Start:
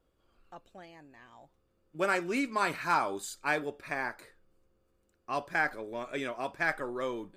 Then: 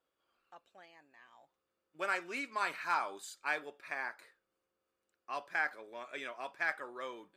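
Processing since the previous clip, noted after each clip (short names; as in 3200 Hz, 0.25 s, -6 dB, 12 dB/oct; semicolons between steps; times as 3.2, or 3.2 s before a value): HPF 1500 Hz 6 dB/oct; high shelf 4300 Hz -9.5 dB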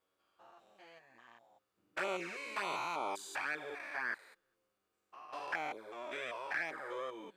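stepped spectrum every 0.2 s; envelope flanger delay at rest 10.8 ms, full sweep at -36 dBFS; gain +7 dB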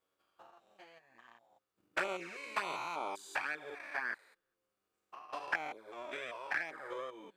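transient shaper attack +8 dB, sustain -3 dB; gain -2 dB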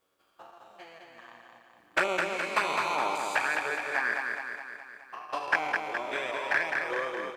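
feedback echo 0.209 s, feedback 58%, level -4 dB; gain +8.5 dB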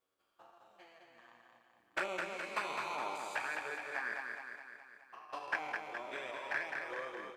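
flange 0.65 Hz, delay 7.9 ms, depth 1.4 ms, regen -67%; gain -6 dB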